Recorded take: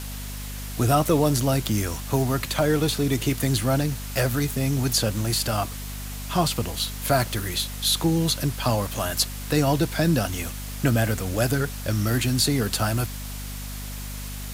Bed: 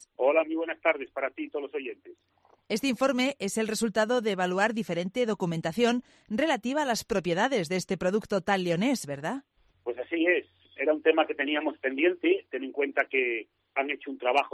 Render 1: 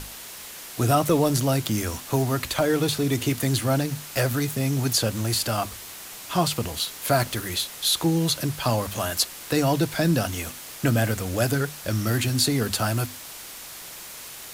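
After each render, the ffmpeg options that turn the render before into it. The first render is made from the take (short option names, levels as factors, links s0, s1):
-af "bandreject=f=50:t=h:w=6,bandreject=f=100:t=h:w=6,bandreject=f=150:t=h:w=6,bandreject=f=200:t=h:w=6,bandreject=f=250:t=h:w=6"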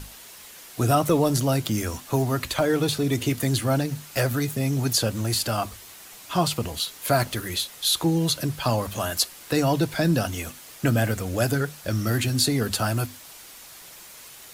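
-af "afftdn=nr=6:nf=-40"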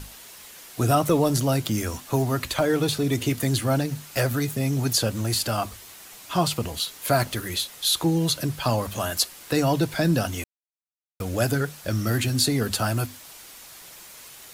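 -filter_complex "[0:a]asplit=3[s0][s1][s2];[s0]atrim=end=10.44,asetpts=PTS-STARTPTS,afade=t=out:st=10.436:d=0.004:c=hsin[s3];[s1]atrim=start=10.44:end=11.2,asetpts=PTS-STARTPTS,volume=0[s4];[s2]atrim=start=11.2,asetpts=PTS-STARTPTS,afade=t=in:d=0.004:c=hsin[s5];[s3][s4][s5]concat=n=3:v=0:a=1"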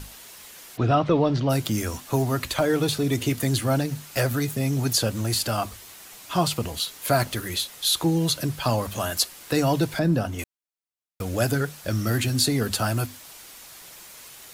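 -filter_complex "[0:a]asplit=3[s0][s1][s2];[s0]afade=t=out:st=0.76:d=0.02[s3];[s1]lowpass=f=4000:w=0.5412,lowpass=f=4000:w=1.3066,afade=t=in:st=0.76:d=0.02,afade=t=out:st=1.49:d=0.02[s4];[s2]afade=t=in:st=1.49:d=0.02[s5];[s3][s4][s5]amix=inputs=3:normalize=0,asettb=1/sr,asplit=3[s6][s7][s8];[s6]atrim=end=9.994[s9];[s7]atrim=start=9.99:end=10.39,asetpts=PTS-STARTPTS,afade=t=in:d=0.004:c=qsin,afade=t=out:st=0.396:d=0.004:c=qsin,highshelf=f=2200:g=-11.5[s10];[s8]atrim=start=10.386[s11];[s9][s10]acrossfade=d=0.004:c1=hsin:c2=qsin[s12];[s12][s11]acrossfade=d=0.004:c1=qsin:c2=hsin"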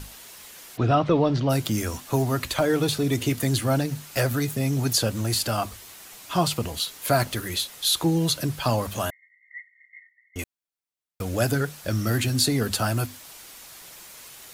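-filter_complex "[0:a]asettb=1/sr,asplit=3[s0][s1][s2];[s0]atrim=end=9.104[s3];[s1]atrim=start=9.1:end=10.36,asetpts=PTS-STARTPTS,afade=t=in:d=0.004:c=qsin,afade=t=out:st=1.256:d=0.004:c=qsin,asuperpass=centerf=2000:order=20:qfactor=5.9[s4];[s2]atrim=start=10.356[s5];[s3][s4]acrossfade=d=0.004:c1=hsin:c2=qsin[s6];[s6][s5]acrossfade=d=0.004:c1=qsin:c2=hsin"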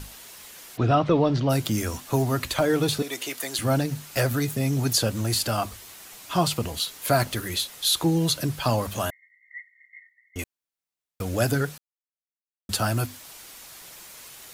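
-filter_complex "[0:a]asettb=1/sr,asplit=3[s0][s1][s2];[s0]atrim=end=3.024[s3];[s1]atrim=start=3.02:end=3.59,asetpts=PTS-STARTPTS,afade=t=in:d=0.004:c=qsin,afade=t=out:st=0.566:d=0.004:c=qsin,highpass=600[s4];[s2]atrim=start=3.586[s5];[s3][s4]acrossfade=d=0.004:c1=hsin:c2=qsin[s6];[s6][s5]acrossfade=d=0.004:c1=qsin:c2=hsin,asplit=3[s7][s8][s9];[s7]atrim=end=11.78,asetpts=PTS-STARTPTS,afade=t=out:st=11.776:d=0.004:c=hsin[s10];[s8]atrim=start=11.78:end=12.69,asetpts=PTS-STARTPTS,volume=0[s11];[s9]atrim=start=12.69,asetpts=PTS-STARTPTS,afade=t=in:d=0.004:c=hsin[s12];[s10][s11][s12]concat=n=3:v=0:a=1"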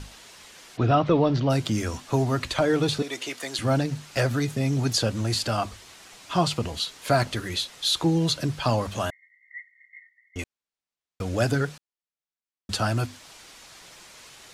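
-af "lowpass=6800"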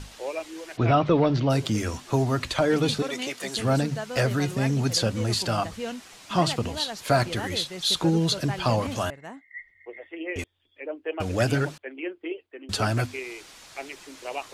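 -filter_complex "[1:a]volume=0.355[s0];[0:a][s0]amix=inputs=2:normalize=0"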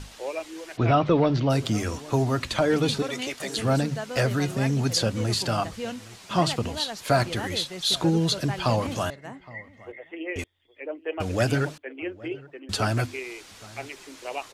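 -filter_complex "[0:a]asplit=2[s0][s1];[s1]adelay=816.3,volume=0.0891,highshelf=f=4000:g=-18.4[s2];[s0][s2]amix=inputs=2:normalize=0"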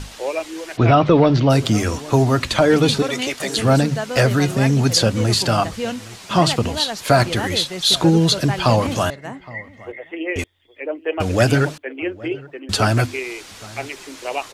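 -af "volume=2.51,alimiter=limit=0.708:level=0:latency=1"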